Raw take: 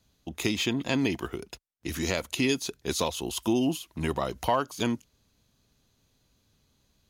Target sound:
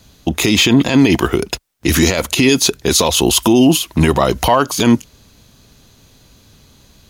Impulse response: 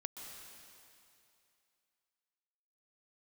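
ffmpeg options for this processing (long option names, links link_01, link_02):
-af "alimiter=level_in=22dB:limit=-1dB:release=50:level=0:latency=1,volume=-1dB"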